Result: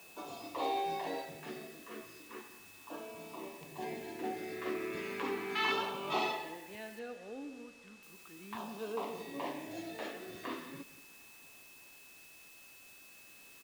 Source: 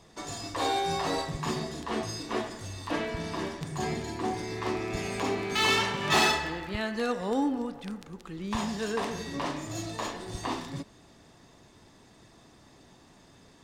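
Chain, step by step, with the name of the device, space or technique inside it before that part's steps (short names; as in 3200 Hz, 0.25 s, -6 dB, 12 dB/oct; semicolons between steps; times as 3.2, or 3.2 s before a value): shortwave radio (BPF 300–2700 Hz; tremolo 0.2 Hz, depth 72%; LFO notch saw down 0.35 Hz 530–2100 Hz; whine 2600 Hz -54 dBFS; white noise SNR 17 dB); 6.99–8.03 air absorption 65 m; echo 0.179 s -16 dB; gain -3 dB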